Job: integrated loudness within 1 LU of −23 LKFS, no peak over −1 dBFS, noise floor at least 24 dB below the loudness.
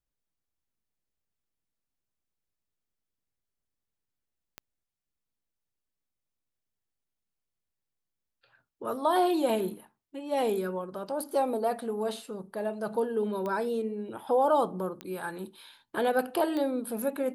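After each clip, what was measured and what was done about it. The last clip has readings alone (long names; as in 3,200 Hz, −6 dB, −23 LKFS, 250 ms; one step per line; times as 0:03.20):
number of clicks 4; integrated loudness −30.0 LKFS; sample peak −14.5 dBFS; target loudness −23.0 LKFS
→ click removal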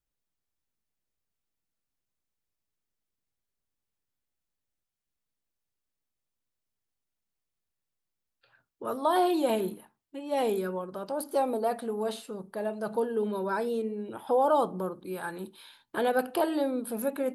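number of clicks 0; integrated loudness −30.0 LKFS; sample peak −14.5 dBFS; target loudness −23.0 LKFS
→ level +7 dB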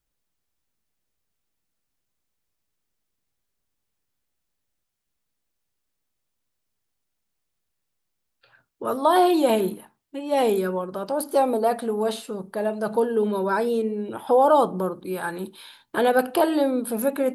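integrated loudness −23.0 LKFS; sample peak −7.5 dBFS; background noise floor −79 dBFS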